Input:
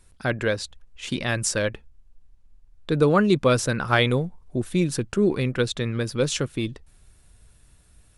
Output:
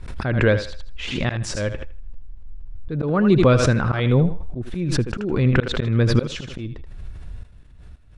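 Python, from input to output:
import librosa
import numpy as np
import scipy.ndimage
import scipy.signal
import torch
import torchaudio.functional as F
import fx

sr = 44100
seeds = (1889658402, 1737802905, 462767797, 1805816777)

p1 = scipy.signal.sosfilt(scipy.signal.bessel(2, 2700.0, 'lowpass', norm='mag', fs=sr, output='sos'), x)
p2 = fx.low_shelf(p1, sr, hz=170.0, db=9.5)
p3 = fx.rider(p2, sr, range_db=10, speed_s=0.5)
p4 = fx.auto_swell(p3, sr, attack_ms=374.0)
p5 = p4 * (1.0 - 0.34 / 2.0 + 0.34 / 2.0 * np.cos(2.0 * np.pi * 0.67 * (np.arange(len(p4)) / sr)))
p6 = p5 + fx.echo_thinned(p5, sr, ms=79, feedback_pct=30, hz=360.0, wet_db=-9.5, dry=0)
p7 = fx.pre_swell(p6, sr, db_per_s=46.0)
y = F.gain(torch.from_numpy(p7), 7.5).numpy()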